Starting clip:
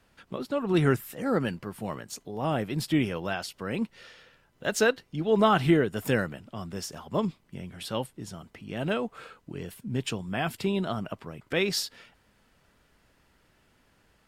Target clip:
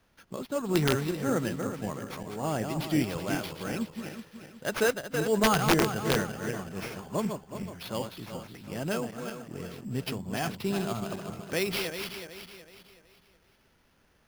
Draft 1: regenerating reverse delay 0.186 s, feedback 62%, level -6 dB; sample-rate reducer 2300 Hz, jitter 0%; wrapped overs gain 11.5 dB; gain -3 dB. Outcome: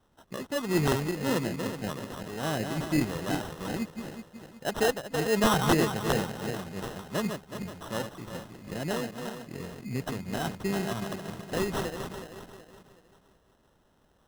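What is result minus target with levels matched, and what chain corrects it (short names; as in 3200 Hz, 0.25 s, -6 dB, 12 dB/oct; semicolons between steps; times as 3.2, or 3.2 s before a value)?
sample-rate reducer: distortion +7 dB
regenerating reverse delay 0.186 s, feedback 62%, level -6 dB; sample-rate reducer 7800 Hz, jitter 0%; wrapped overs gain 11.5 dB; gain -3 dB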